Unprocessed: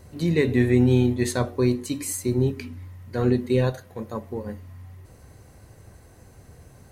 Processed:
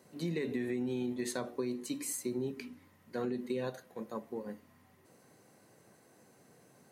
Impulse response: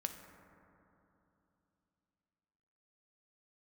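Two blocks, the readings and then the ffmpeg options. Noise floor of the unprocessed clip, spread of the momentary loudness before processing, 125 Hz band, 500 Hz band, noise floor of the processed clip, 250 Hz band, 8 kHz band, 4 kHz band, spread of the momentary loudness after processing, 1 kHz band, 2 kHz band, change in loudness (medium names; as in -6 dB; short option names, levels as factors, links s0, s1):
-51 dBFS, 17 LU, -22.0 dB, -13.0 dB, -64 dBFS, -13.5 dB, -8.5 dB, -11.0 dB, 11 LU, -11.0 dB, -13.0 dB, -14.5 dB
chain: -af "alimiter=limit=0.224:level=0:latency=1,highpass=f=170:w=0.5412,highpass=f=170:w=1.3066,acompressor=threshold=0.0708:ratio=6,volume=0.398"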